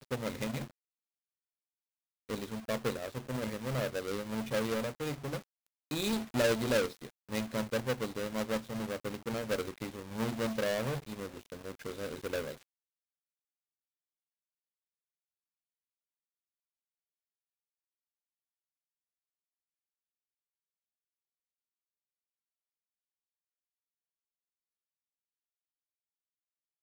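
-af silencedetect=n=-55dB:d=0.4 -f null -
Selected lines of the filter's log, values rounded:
silence_start: 0.71
silence_end: 2.29 | silence_duration: 1.58
silence_start: 12.63
silence_end: 26.82 | silence_duration: 14.19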